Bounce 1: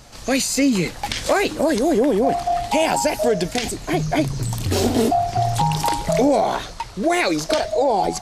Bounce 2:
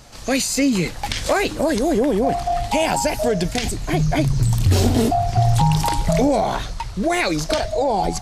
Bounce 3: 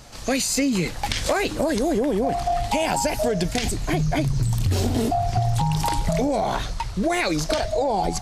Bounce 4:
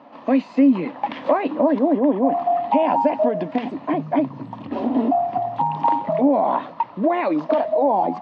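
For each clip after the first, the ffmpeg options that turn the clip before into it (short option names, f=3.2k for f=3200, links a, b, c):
-af "asubboost=boost=3:cutoff=180"
-af "acompressor=threshold=-18dB:ratio=6"
-af "highpass=f=220:w=0.5412,highpass=f=220:w=1.3066,equalizer=f=270:t=q:w=4:g=9,equalizer=f=410:t=q:w=4:g=-7,equalizer=f=590:t=q:w=4:g=5,equalizer=f=990:t=q:w=4:g=9,equalizer=f=1.5k:t=q:w=4:g=-9,equalizer=f=2.2k:t=q:w=4:g=-7,lowpass=f=2.3k:w=0.5412,lowpass=f=2.3k:w=1.3066,volume=1.5dB"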